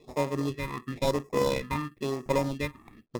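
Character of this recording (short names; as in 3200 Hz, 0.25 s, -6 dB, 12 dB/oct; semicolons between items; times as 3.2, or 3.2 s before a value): aliases and images of a low sample rate 1500 Hz, jitter 0%; phasing stages 4, 0.98 Hz, lowest notch 490–3000 Hz; IMA ADPCM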